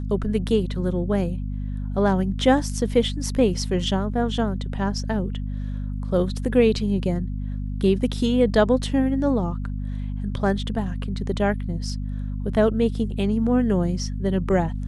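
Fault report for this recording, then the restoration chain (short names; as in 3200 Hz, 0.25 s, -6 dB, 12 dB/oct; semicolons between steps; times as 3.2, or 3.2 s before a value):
hum 50 Hz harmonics 5 -28 dBFS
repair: de-hum 50 Hz, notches 5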